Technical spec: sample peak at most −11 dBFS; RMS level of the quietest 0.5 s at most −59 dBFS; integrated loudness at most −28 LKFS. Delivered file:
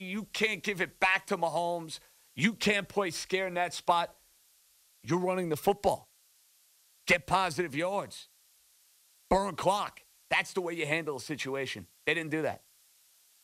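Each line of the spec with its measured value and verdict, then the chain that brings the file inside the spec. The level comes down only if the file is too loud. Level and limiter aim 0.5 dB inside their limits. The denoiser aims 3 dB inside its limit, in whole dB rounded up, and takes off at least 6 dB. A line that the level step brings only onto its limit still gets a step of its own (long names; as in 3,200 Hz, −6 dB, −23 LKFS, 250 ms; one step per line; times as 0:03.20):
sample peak −13.5 dBFS: in spec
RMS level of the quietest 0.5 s −65 dBFS: in spec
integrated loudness −31.0 LKFS: in spec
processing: no processing needed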